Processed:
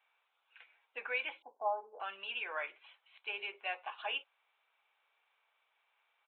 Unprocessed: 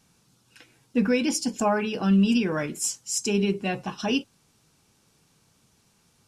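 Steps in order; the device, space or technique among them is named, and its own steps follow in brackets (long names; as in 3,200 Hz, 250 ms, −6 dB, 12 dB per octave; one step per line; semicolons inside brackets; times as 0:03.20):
0:01.42–0:02.00: Butterworth low-pass 1,000 Hz 48 dB per octave
bass and treble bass −13 dB, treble −8 dB
musical greeting card (downsampling to 8,000 Hz; high-pass filter 670 Hz 24 dB per octave; parametric band 2,300 Hz +6.5 dB 0.26 octaves)
level −6.5 dB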